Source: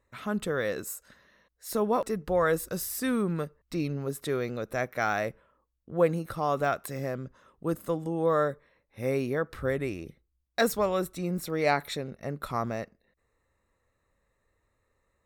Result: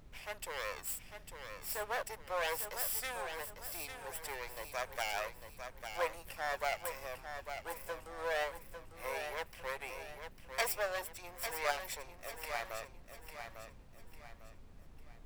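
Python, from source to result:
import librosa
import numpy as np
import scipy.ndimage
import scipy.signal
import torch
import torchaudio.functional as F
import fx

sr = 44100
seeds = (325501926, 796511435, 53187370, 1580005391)

y = fx.lower_of_two(x, sr, delay_ms=0.38)
y = scipy.signal.sosfilt(scipy.signal.butter(4, 630.0, 'highpass', fs=sr, output='sos'), y)
y = fx.high_shelf(y, sr, hz=11000.0, db=8.0)
y = fx.dmg_noise_colour(y, sr, seeds[0], colour='brown', level_db=-50.0)
y = fx.echo_feedback(y, sr, ms=850, feedback_pct=37, wet_db=-8)
y = y * librosa.db_to_amplitude(-4.5)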